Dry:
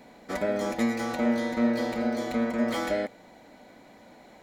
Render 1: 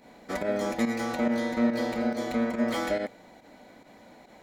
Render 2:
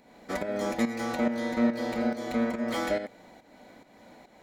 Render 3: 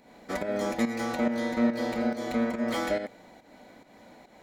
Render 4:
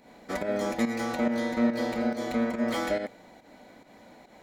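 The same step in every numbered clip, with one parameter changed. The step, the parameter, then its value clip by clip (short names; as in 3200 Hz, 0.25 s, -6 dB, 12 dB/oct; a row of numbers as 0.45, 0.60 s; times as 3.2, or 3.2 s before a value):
pump, release: 79, 338, 223, 146 ms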